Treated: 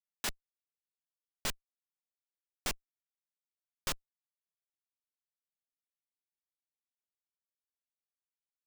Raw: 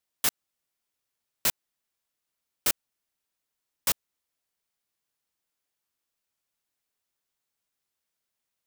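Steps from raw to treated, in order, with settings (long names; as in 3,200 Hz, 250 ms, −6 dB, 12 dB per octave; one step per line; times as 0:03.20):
running median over 3 samples
comparator with hysteresis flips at −41 dBFS
level +9.5 dB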